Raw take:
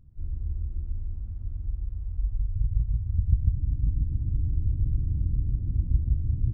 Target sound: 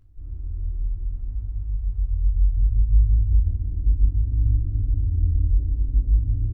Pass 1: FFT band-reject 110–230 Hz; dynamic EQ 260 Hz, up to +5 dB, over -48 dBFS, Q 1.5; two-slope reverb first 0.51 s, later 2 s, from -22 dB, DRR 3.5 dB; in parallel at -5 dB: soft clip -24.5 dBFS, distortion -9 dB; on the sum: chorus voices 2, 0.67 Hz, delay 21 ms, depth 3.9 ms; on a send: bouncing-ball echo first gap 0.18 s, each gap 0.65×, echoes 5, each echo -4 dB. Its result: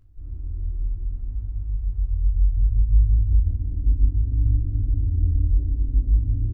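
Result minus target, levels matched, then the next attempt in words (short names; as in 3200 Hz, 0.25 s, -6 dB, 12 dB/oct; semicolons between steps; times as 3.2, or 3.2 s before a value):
250 Hz band +3.0 dB
FFT band-reject 110–230 Hz; two-slope reverb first 0.51 s, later 2 s, from -22 dB, DRR 3.5 dB; in parallel at -5 dB: soft clip -24.5 dBFS, distortion -9 dB; on the sum: chorus voices 2, 0.67 Hz, delay 21 ms, depth 3.9 ms; on a send: bouncing-ball echo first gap 0.18 s, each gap 0.65×, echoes 5, each echo -4 dB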